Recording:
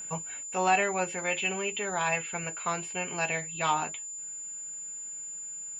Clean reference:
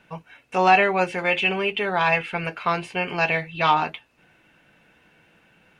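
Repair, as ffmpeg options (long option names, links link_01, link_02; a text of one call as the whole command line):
ffmpeg -i in.wav -af "bandreject=frequency=7100:width=30,asetnsamples=nb_out_samples=441:pad=0,asendcmd='0.43 volume volume 8.5dB',volume=0dB" out.wav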